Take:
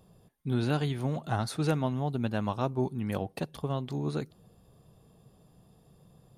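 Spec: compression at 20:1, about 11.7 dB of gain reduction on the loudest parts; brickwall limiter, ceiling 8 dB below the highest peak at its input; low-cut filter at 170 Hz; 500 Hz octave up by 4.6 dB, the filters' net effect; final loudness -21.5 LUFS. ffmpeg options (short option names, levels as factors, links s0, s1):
-af "highpass=170,equalizer=f=500:t=o:g=6,acompressor=threshold=0.0251:ratio=20,volume=9.44,alimiter=limit=0.316:level=0:latency=1"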